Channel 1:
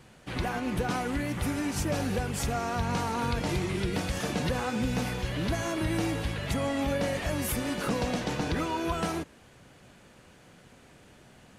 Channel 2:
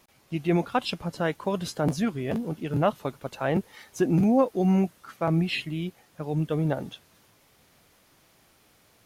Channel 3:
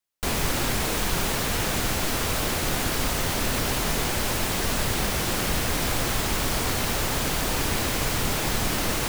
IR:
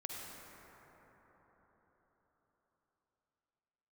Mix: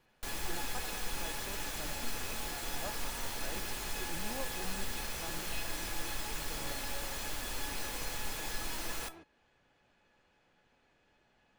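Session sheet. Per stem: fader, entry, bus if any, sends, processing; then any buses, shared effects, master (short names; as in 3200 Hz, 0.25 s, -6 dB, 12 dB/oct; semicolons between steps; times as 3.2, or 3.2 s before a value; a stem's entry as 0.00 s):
-1.0 dB, 0.00 s, no send, LPF 4500 Hz 12 dB/oct; compressor 2:1, threshold -36 dBFS, peak gain reduction 6.5 dB
-7.0 dB, 0.00 s, no send, dry
-1.0 dB, 0.00 s, no send, bell 710 Hz -2.5 dB 1.4 oct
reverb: off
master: bell 130 Hz -8.5 dB 2.3 oct; resonator 850 Hz, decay 0.17 s, harmonics all, mix 80%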